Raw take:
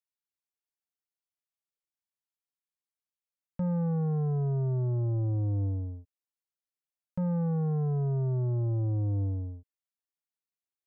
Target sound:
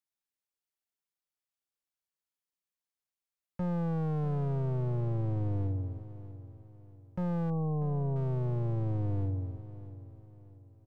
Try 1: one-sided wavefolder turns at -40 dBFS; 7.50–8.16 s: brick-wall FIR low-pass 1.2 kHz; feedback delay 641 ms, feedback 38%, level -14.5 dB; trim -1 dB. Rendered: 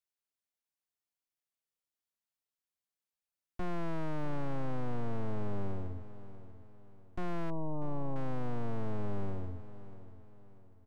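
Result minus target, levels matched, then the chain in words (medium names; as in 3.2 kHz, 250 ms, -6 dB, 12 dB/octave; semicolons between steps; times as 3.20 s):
one-sided wavefolder: distortion +20 dB
one-sided wavefolder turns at -29.5 dBFS; 7.50–8.16 s: brick-wall FIR low-pass 1.2 kHz; feedback delay 641 ms, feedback 38%, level -14.5 dB; trim -1 dB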